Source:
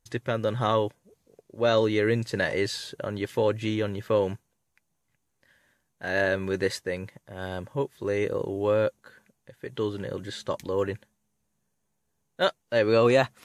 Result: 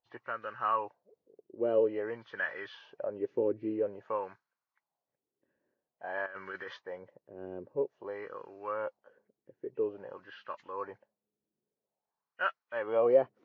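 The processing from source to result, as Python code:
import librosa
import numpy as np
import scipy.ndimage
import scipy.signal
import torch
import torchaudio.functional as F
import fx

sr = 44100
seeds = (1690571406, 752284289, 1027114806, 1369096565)

y = fx.freq_compress(x, sr, knee_hz=1800.0, ratio=1.5)
y = fx.wah_lfo(y, sr, hz=0.5, low_hz=350.0, high_hz=1400.0, q=2.9)
y = fx.over_compress(y, sr, threshold_db=-42.0, ratio=-1.0, at=(6.26, 6.77))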